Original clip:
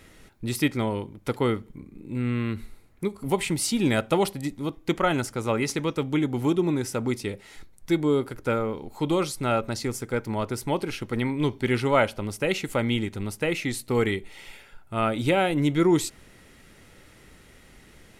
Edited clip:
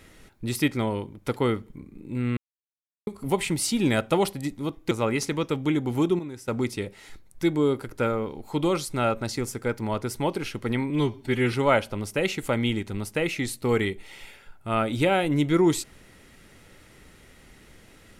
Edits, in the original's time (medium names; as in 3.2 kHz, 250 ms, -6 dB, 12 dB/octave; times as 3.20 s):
2.37–3.07 s: mute
4.91–5.38 s: delete
6.66–6.95 s: gain -11 dB
11.37–11.79 s: stretch 1.5×